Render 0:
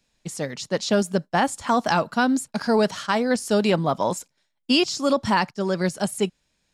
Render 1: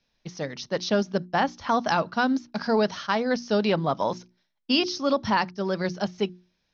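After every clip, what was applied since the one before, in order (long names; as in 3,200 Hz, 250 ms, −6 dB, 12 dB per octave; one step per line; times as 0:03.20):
Chebyshev low-pass filter 6,200 Hz, order 8
mains-hum notches 60/120/180/240/300/360 Hz
level −2 dB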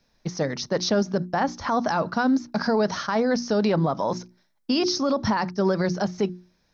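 parametric band 3,000 Hz −9.5 dB 0.86 octaves
brickwall limiter −23 dBFS, peak gain reduction 11.5 dB
level +8.5 dB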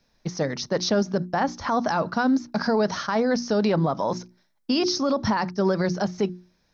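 no processing that can be heard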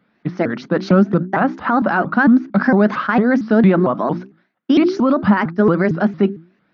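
loudspeaker in its box 180–2,900 Hz, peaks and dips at 210 Hz +7 dB, 320 Hz +6 dB, 480 Hz −4 dB, 900 Hz −4 dB, 1,400 Hz +6 dB
pitch modulation by a square or saw wave saw up 4.4 Hz, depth 250 cents
level +7 dB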